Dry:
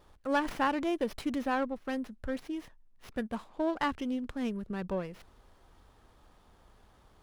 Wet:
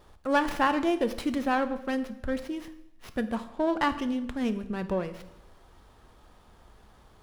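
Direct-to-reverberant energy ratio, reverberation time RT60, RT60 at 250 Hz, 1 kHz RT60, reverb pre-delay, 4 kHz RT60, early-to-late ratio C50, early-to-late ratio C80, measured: 10.0 dB, 0.85 s, 0.90 s, 0.80 s, 3 ms, 0.80 s, 13.5 dB, 15.5 dB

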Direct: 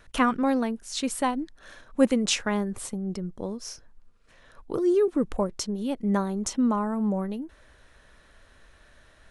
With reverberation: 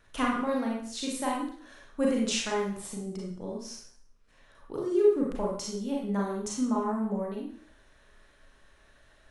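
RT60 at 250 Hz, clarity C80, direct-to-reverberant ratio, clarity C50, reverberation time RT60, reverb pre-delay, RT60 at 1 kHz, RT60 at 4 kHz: 0.50 s, 6.0 dB, -3.0 dB, 1.5 dB, 0.55 s, 31 ms, 0.55 s, 0.55 s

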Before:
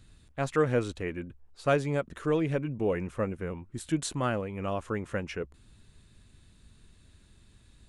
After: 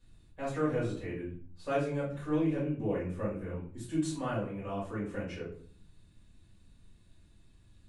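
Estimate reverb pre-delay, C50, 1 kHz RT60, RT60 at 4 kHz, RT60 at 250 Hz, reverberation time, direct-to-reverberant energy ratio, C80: 4 ms, 5.0 dB, 0.45 s, 0.35 s, 0.70 s, 0.45 s, -8.5 dB, 10.0 dB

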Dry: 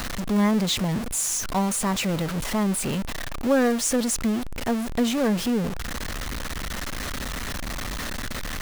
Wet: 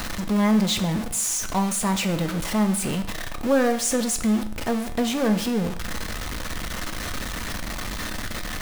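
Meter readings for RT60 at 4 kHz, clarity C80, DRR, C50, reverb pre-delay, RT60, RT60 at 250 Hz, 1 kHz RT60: 0.55 s, 15.5 dB, 7.0 dB, 12.5 dB, 3 ms, 0.65 s, 0.60 s, 0.60 s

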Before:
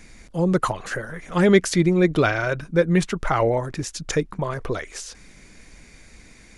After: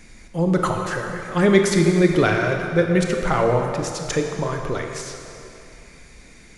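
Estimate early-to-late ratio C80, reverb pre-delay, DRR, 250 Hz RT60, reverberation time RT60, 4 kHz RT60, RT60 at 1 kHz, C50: 4.5 dB, 23 ms, 3.0 dB, 2.6 s, 2.8 s, 2.2 s, 2.8 s, 3.5 dB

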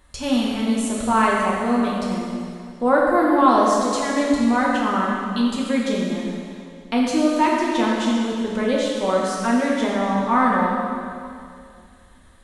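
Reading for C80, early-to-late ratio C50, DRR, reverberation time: 0.5 dB, -1.0 dB, -4.5 dB, 2.4 s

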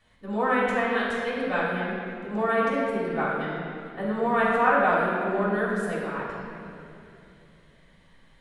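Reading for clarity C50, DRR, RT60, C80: -1.5 dB, -8.5 dB, 2.8 s, 0.0 dB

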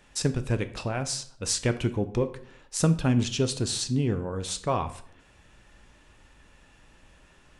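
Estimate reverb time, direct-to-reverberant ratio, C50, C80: 0.60 s, 9.5 dB, 14.5 dB, 17.5 dB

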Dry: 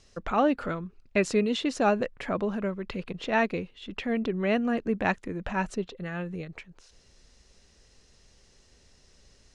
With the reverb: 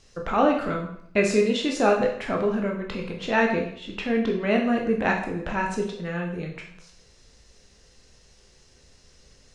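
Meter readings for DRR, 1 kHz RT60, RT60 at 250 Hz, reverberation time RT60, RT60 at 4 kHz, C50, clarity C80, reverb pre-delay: 0.0 dB, 0.60 s, 0.70 s, 0.65 s, 0.55 s, 6.5 dB, 9.5 dB, 10 ms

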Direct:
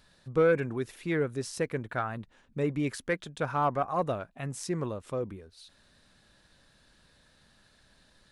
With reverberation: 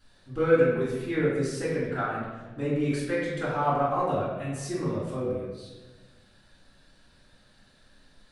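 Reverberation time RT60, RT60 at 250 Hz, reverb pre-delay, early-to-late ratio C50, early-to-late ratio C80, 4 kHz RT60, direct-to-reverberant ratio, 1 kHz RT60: 1.3 s, 1.5 s, 3 ms, -0.5 dB, 2.5 dB, 0.85 s, -11.0 dB, 1.1 s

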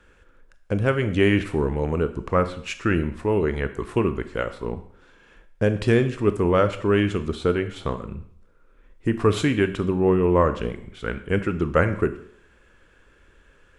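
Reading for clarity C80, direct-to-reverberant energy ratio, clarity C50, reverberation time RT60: 16.0 dB, 10.0 dB, 13.0 dB, 0.60 s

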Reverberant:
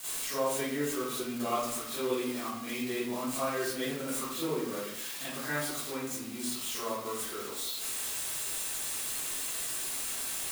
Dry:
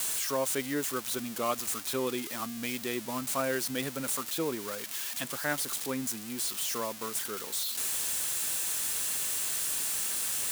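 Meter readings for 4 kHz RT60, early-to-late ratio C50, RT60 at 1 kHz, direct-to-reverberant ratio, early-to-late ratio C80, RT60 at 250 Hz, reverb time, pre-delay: 0.45 s, -2.0 dB, 0.75 s, -13.0 dB, 3.0 dB, 0.90 s, 0.80 s, 32 ms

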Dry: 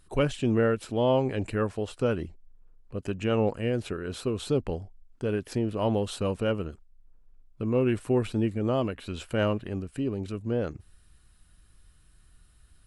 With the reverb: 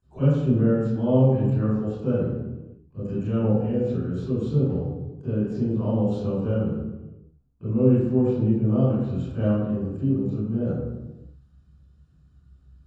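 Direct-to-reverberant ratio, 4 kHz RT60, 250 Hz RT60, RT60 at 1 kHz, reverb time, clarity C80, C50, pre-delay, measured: -13.5 dB, 0.85 s, 1.4 s, 1.0 s, 1.1 s, 0.5 dB, -3.0 dB, 22 ms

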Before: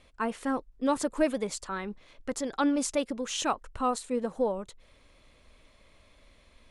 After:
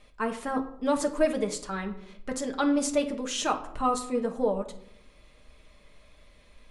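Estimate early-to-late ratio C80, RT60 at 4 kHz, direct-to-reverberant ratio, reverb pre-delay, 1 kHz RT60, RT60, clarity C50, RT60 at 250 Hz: 15.5 dB, 0.45 s, 3.0 dB, 5 ms, 0.70 s, 0.75 s, 12.0 dB, 1.1 s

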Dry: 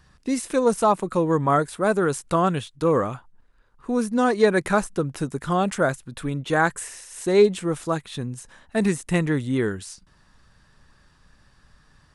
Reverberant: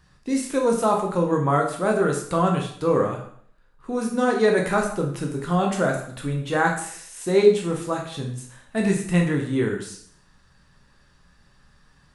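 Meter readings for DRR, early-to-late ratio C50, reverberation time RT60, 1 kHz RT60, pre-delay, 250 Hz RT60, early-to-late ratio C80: 0.5 dB, 6.5 dB, 0.60 s, 0.60 s, 6 ms, 0.60 s, 9.5 dB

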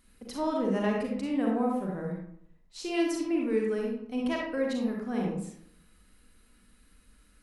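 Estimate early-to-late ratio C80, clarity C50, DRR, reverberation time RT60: 5.0 dB, 0.5 dB, -1.5 dB, 0.70 s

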